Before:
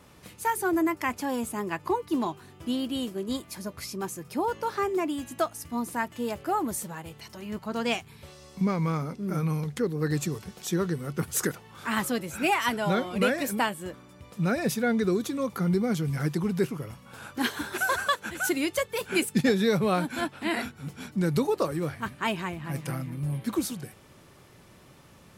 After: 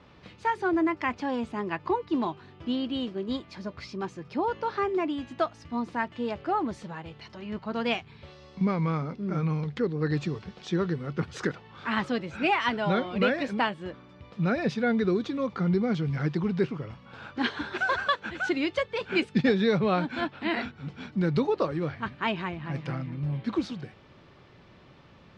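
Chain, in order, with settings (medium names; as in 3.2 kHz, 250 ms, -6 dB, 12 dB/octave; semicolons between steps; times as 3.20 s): low-pass 4.4 kHz 24 dB/octave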